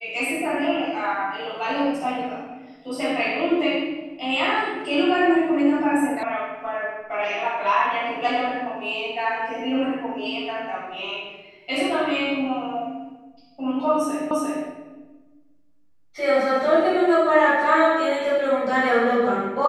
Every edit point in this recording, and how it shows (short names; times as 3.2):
6.23 sound cut off
14.31 repeat of the last 0.35 s